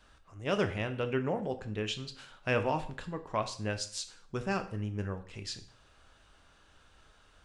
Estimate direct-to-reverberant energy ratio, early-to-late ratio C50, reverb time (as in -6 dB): 8.0 dB, 13.5 dB, 0.50 s